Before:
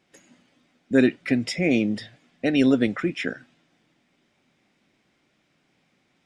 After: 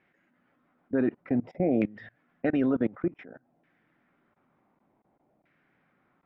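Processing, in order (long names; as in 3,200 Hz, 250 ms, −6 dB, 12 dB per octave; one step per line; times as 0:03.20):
auto-filter low-pass saw down 0.55 Hz 700–1,900 Hz
output level in coarse steps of 23 dB
level −1 dB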